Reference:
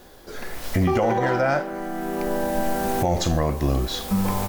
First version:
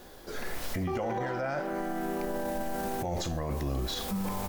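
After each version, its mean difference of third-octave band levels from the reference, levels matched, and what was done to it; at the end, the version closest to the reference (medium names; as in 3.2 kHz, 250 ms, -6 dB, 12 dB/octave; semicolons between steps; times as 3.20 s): 3.0 dB: hum notches 50/100 Hz; peak limiter -22.5 dBFS, peak gain reduction 11 dB; trim -2 dB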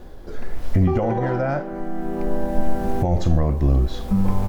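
7.0 dB: tilt EQ -3 dB/octave; in parallel at 0 dB: compression, threshold -34 dBFS, peak gain reduction 25.5 dB; on the sum: trim -5.5 dB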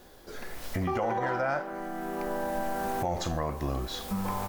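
2.0 dB: dynamic bell 1.1 kHz, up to +7 dB, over -36 dBFS, Q 0.83; compression 1.5:1, threshold -31 dBFS, peak gain reduction 6.5 dB; trim -5.5 dB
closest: third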